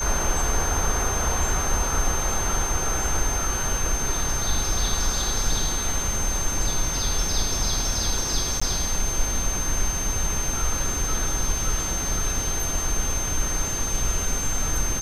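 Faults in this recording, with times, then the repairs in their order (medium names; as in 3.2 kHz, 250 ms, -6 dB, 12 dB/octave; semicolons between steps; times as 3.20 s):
whine 6.3 kHz -27 dBFS
8.60–8.62 s: dropout 15 ms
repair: band-stop 6.3 kHz, Q 30; interpolate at 8.60 s, 15 ms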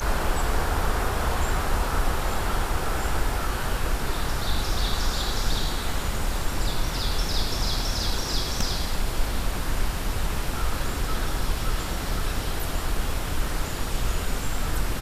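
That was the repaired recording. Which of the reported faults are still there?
nothing left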